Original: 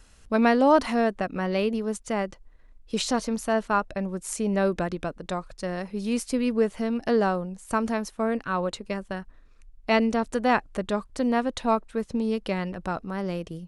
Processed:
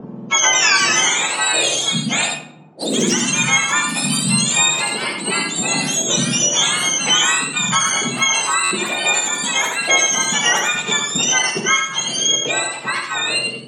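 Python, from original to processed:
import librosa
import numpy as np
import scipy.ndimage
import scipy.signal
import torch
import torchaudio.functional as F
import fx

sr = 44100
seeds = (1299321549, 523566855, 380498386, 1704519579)

y = fx.octave_mirror(x, sr, pivot_hz=1200.0)
y = fx.low_shelf(y, sr, hz=200.0, db=-10.0)
y = fx.env_lowpass(y, sr, base_hz=690.0, full_db=-25.5)
y = fx.high_shelf(y, sr, hz=7400.0, db=7.0)
y = y + 10.0 ** (-5.5 / 20.0) * np.pad(y, (int(84 * sr / 1000.0), 0))[:len(y)]
y = fx.room_shoebox(y, sr, seeds[0], volume_m3=1000.0, walls='furnished', distance_m=1.5)
y = fx.echo_pitch(y, sr, ms=239, semitones=2, count=3, db_per_echo=-6.0)
y = fx.buffer_glitch(y, sr, at_s=(8.63,), block=512, repeats=6)
y = fx.band_squash(y, sr, depth_pct=70)
y = F.gain(torch.from_numpy(y), 8.0).numpy()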